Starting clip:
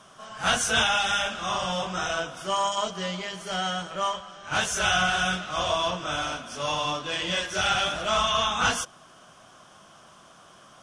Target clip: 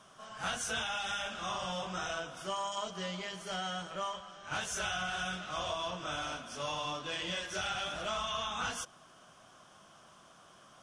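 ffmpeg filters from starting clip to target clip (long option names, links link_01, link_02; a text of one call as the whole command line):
ffmpeg -i in.wav -af "acompressor=threshold=-27dB:ratio=4,volume=-6.5dB" out.wav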